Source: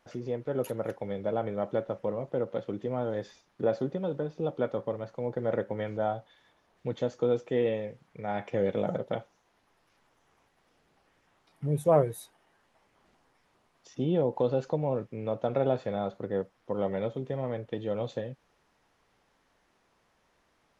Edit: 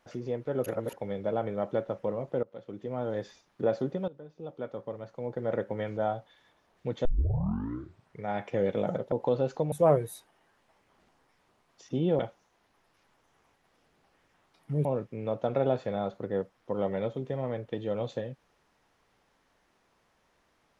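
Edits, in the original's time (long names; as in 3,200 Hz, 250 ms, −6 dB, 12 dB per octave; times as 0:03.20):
0:00.66–0:00.93: reverse
0:02.43–0:03.15: fade in, from −20.5 dB
0:04.08–0:05.77: fade in, from −18.5 dB
0:07.05: tape start 1.20 s
0:09.12–0:11.78: swap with 0:14.25–0:14.85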